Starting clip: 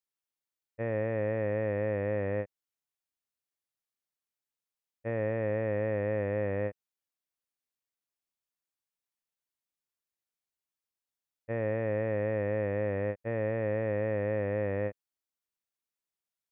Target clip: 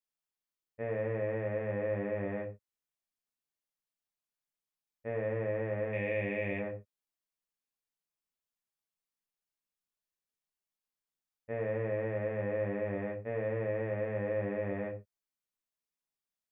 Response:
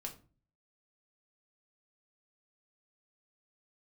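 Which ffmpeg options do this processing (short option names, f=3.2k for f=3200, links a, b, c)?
-filter_complex "[0:a]asettb=1/sr,asplit=3[a][b][c];[a]atrim=end=5.934[d];[b]atrim=start=5.93:end=6.59,asetpts=PTS-STARTPTS,afade=t=in:d=0.004:c=qsin,afade=t=out:st=0.656:d=0.004:c=qsin,highshelf=f=1.8k:t=q:w=3:g=8.5[e];[c]atrim=start=6.586[f];[d][e]acrossfade=d=0.004:c1=hsin:c2=qsin[g];[g][f]acrossfade=d=0.004:c1=qsin:c2=hsin[h];[1:a]atrim=start_sample=2205,afade=t=out:st=0.18:d=0.01,atrim=end_sample=8379[i];[h][i]afir=irnorm=-1:irlink=0"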